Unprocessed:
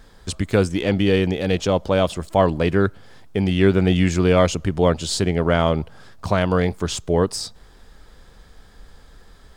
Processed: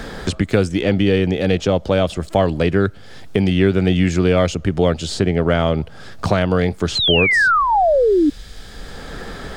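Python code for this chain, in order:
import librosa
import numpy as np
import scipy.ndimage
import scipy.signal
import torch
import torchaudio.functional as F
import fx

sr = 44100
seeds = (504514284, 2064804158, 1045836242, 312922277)

y = fx.high_shelf(x, sr, hz=7500.0, db=-7.5)
y = fx.spec_paint(y, sr, seeds[0], shape='fall', start_s=6.95, length_s=1.35, low_hz=280.0, high_hz=4300.0, level_db=-16.0)
y = fx.peak_eq(y, sr, hz=1000.0, db=-6.5, octaves=0.35)
y = fx.band_squash(y, sr, depth_pct=70)
y = y * 10.0 ** (2.0 / 20.0)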